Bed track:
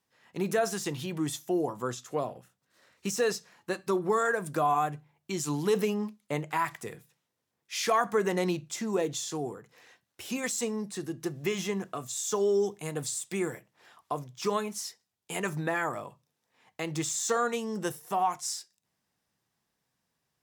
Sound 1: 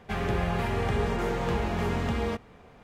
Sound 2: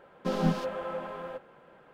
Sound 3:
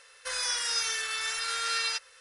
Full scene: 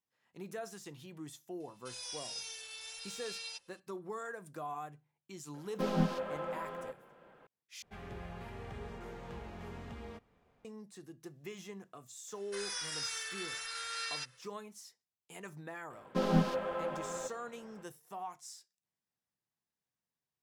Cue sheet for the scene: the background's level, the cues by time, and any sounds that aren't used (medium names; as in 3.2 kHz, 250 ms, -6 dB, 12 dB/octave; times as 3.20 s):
bed track -15.5 dB
1.60 s: add 3 -13 dB + high-order bell 1.5 kHz -12 dB 1.1 oct
5.54 s: add 2 -4 dB
7.82 s: replace with 1 -18 dB
12.27 s: add 3 -9.5 dB, fades 0.02 s
15.90 s: add 2 -1.5 dB